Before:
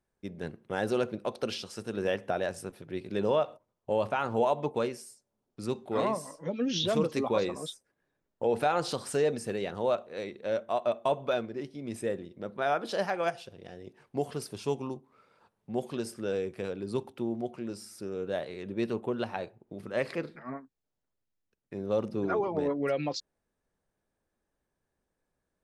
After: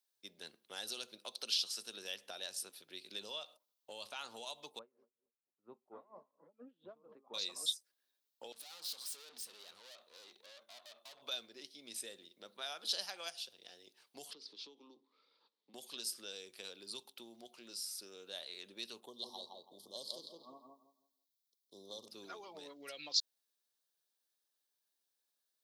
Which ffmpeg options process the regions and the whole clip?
ffmpeg -i in.wav -filter_complex "[0:a]asettb=1/sr,asplit=3[link_01][link_02][link_03];[link_01]atrim=end=4.794[link_04];[link_02]atrim=start=4.79:end=7.34,asetpts=PTS-STARTPTS,afade=type=in:duration=0.004:curve=qsin,afade=type=out:start_time=2.546:duration=0.004:curve=qsin,lowpass=frequency=1200:width=0.5412,lowpass=frequency=1200:width=1.3066,asplit=2[link_05][link_06];[link_06]adelay=115,lowpass=frequency=800:poles=1,volume=-18.5dB,asplit=2[link_07][link_08];[link_08]adelay=115,lowpass=frequency=800:poles=1,volume=0.45,asplit=2[link_09][link_10];[link_10]adelay=115,lowpass=frequency=800:poles=1,volume=0.45,asplit=2[link_11][link_12];[link_12]adelay=115,lowpass=frequency=800:poles=1,volume=0.45[link_13];[link_05][link_07][link_09][link_11][link_13]amix=inputs=5:normalize=0,atrim=end_sample=112455,aeval=exprs='val(0)*pow(10,-27*(0.5-0.5*cos(2*PI*4.3*n/s))/20)':channel_layout=same[link_14];[link_03]atrim=start=7.336[link_15];[link_04][link_14]acrossfade=duration=0.004:curve1=hsin:curve2=qsin[link_16];[link_16][link_15]acrossfade=duration=0.004:curve1=qsin:curve2=hsin,asettb=1/sr,asplit=3[link_17][link_18][link_19];[link_17]atrim=end=8.524[link_20];[link_18]atrim=start=8.52:end=11.22,asetpts=PTS-STARTPTS,afade=type=in:duration=0.004:curve=qsin,afade=type=out:start_time=2.696:duration=0.004:curve=qsin,acompressor=threshold=-35dB:ratio=2:attack=3.2:release=140:knee=1:detection=peak,aeval=exprs='(tanh(178*val(0)+0.7)-tanh(0.7))/178':channel_layout=same[link_21];[link_19]atrim=start=11.216[link_22];[link_20][link_21]acrossfade=duration=0.004:curve1=hsin:curve2=qsin[link_23];[link_23][link_22]acrossfade=duration=0.004:curve1=qsin:curve2=hsin,asettb=1/sr,asplit=3[link_24][link_25][link_26];[link_24]atrim=end=14.334[link_27];[link_25]atrim=start=14.33:end=15.74,asetpts=PTS-STARTPTS,afade=type=in:duration=0.004:curve=qsin,afade=type=out:start_time=1.406:duration=0.004:curve=qsin,acompressor=threshold=-41dB:ratio=8:attack=3.2:release=140:knee=1:detection=peak,highpass=frequency=160:width=0.5412,highpass=frequency=160:width=1.3066,equalizer=frequency=290:width_type=q:width=4:gain=9,equalizer=frequency=470:width_type=q:width=4:gain=5,equalizer=frequency=700:width_type=q:width=4:gain=-8,equalizer=frequency=1500:width_type=q:width=4:gain=-9,equalizer=frequency=2700:width_type=q:width=4:gain=-7,lowpass=frequency=4300:width=0.5412,lowpass=frequency=4300:width=1.3066[link_28];[link_26]atrim=start=15.736[link_29];[link_27][link_28]acrossfade=duration=0.004:curve1=hsin:curve2=qsin[link_30];[link_30][link_29]acrossfade=duration=0.004:curve1=qsin:curve2=hsin,asettb=1/sr,asplit=3[link_31][link_32][link_33];[link_31]atrim=end=19.064[link_34];[link_32]atrim=start=19.06:end=22.08,asetpts=PTS-STARTPTS,afade=type=in:duration=0.004:curve=qsin,afade=type=out:start_time=3.016:duration=0.004:curve=qsin,asuperstop=centerf=1900:order=20:qfactor=0.93,asplit=2[link_35][link_36];[link_36]adelay=165,lowpass=frequency=2200:poles=1,volume=-4dB,asplit=2[link_37][link_38];[link_38]adelay=165,lowpass=frequency=2200:poles=1,volume=0.27,asplit=2[link_39][link_40];[link_40]adelay=165,lowpass=frequency=2200:poles=1,volume=0.27,asplit=2[link_41][link_42];[link_42]adelay=165,lowpass=frequency=2200:poles=1,volume=0.27[link_43];[link_35][link_37][link_39][link_41][link_43]amix=inputs=5:normalize=0,atrim=end_sample=133182[link_44];[link_33]atrim=start=22.076[link_45];[link_34][link_44]acrossfade=duration=0.004:curve1=hsin:curve2=qsin[link_46];[link_46][link_45]acrossfade=duration=0.004:curve1=qsin:curve2=hsin,equalizer=frequency=125:width_type=o:width=1:gain=-6,equalizer=frequency=250:width_type=o:width=1:gain=3,equalizer=frequency=2000:width_type=o:width=1:gain=-5,equalizer=frequency=4000:width_type=o:width=1:gain=9,equalizer=frequency=8000:width_type=o:width=1:gain=-5,acrossover=split=170|3000[link_47][link_48][link_49];[link_48]acompressor=threshold=-33dB:ratio=6[link_50];[link_47][link_50][link_49]amix=inputs=3:normalize=0,aderivative,volume=6dB" out.wav

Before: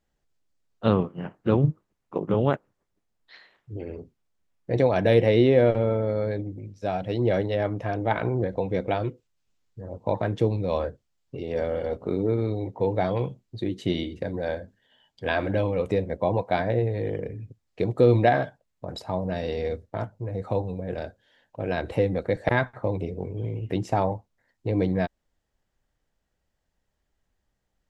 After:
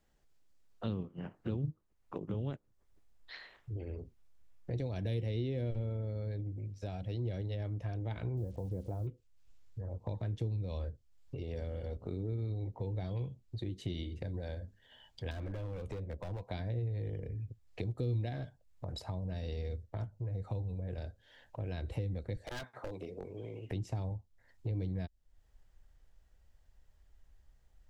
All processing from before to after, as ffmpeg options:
ffmpeg -i in.wav -filter_complex "[0:a]asettb=1/sr,asplit=3[link_01][link_02][link_03];[link_01]atrim=end=8.374[link_04];[link_02]atrim=start=8.37:end=9.07,asetpts=PTS-STARTPTS,afade=type=in:duration=0.004:curve=qsin,afade=type=out:start_time=0.696:duration=0.004:curve=qsin,lowpass=frequency=1100:width=0.5412,lowpass=frequency=1100:width=1.3066,acrusher=bits=8:mix=0:aa=0.5[link_05];[link_03]atrim=start=9.066[link_06];[link_04][link_05]acrossfade=duration=0.004:curve1=hsin:curve2=qsin[link_07];[link_07][link_06]acrossfade=duration=0.004:curve1=qsin:curve2=hsin,asettb=1/sr,asplit=3[link_08][link_09][link_10];[link_08]atrim=end=15.314[link_11];[link_09]atrim=start=15.31:end=16.51,asetpts=PTS-STARTPTS,afade=type=in:duration=0.004:curve=qsin,afade=type=out:start_time=1.196:duration=0.004:curve=qsin,acrossover=split=260|2200[link_12][link_13][link_14];[link_12]acompressor=threshold=-36dB:ratio=4[link_15];[link_13]acompressor=threshold=-28dB:ratio=4[link_16];[link_14]acompressor=threshold=-55dB:ratio=4[link_17];[link_15][link_16][link_17]amix=inputs=3:normalize=0,asoftclip=type=hard:threshold=-26.5dB[link_18];[link_10]atrim=start=16.506[link_19];[link_11][link_18]acrossfade=duration=0.004:curve1=hsin:curve2=qsin[link_20];[link_20][link_19]acrossfade=duration=0.004:curve1=qsin:curve2=hsin,asettb=1/sr,asplit=3[link_21][link_22][link_23];[link_21]atrim=end=22.454[link_24];[link_22]atrim=start=22.45:end=23.71,asetpts=PTS-STARTPTS,afade=type=in:duration=0.004:curve=qsin,afade=type=out:start_time=1.256:duration=0.004:curve=qsin,highpass=300,asoftclip=type=hard:threshold=-24.5dB[link_25];[link_23]atrim=start=23.706[link_26];[link_24][link_25]acrossfade=duration=0.004:curve1=hsin:curve2=qsin[link_27];[link_27][link_26]acrossfade=duration=0.004:curve1=qsin:curve2=hsin,acrossover=split=350|3000[link_28][link_29][link_30];[link_29]acompressor=threshold=-42dB:ratio=3[link_31];[link_28][link_31][link_30]amix=inputs=3:normalize=0,asubboost=boost=5:cutoff=86,acompressor=threshold=-48dB:ratio=2,volume=2.5dB" out.wav

